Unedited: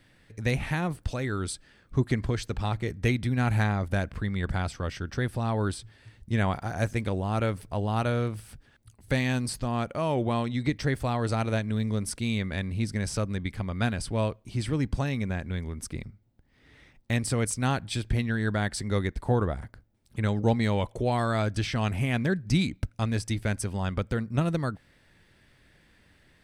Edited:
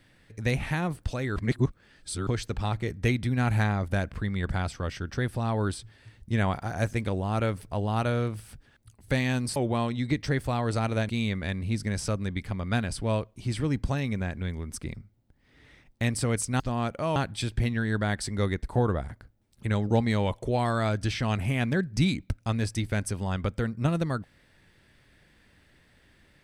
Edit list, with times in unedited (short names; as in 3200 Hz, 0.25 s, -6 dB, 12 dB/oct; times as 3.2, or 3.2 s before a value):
1.36–2.27 reverse
9.56–10.12 move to 17.69
11.65–12.18 cut